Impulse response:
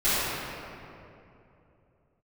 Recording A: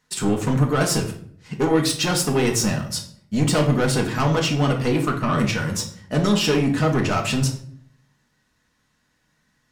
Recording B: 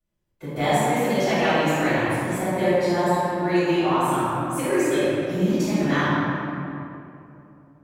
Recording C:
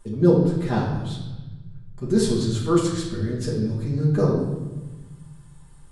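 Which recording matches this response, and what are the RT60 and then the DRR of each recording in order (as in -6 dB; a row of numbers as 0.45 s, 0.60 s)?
B; 0.60 s, 2.8 s, 1.2 s; 1.0 dB, -17.5 dB, -6.5 dB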